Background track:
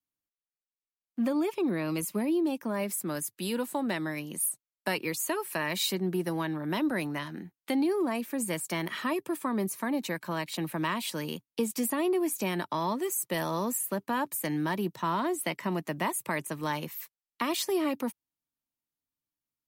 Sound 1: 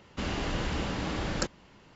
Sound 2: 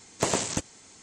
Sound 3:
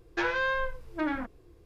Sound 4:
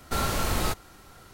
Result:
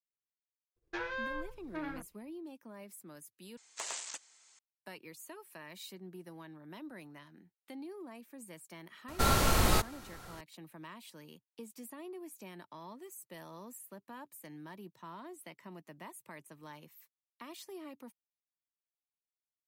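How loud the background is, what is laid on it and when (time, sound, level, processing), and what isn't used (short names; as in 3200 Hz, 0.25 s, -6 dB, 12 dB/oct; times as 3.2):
background track -18.5 dB
0.76 add 3 -10 dB + expander -46 dBFS
3.57 replace with 2 -10.5 dB + HPF 1100 Hz
9.08 add 4
not used: 1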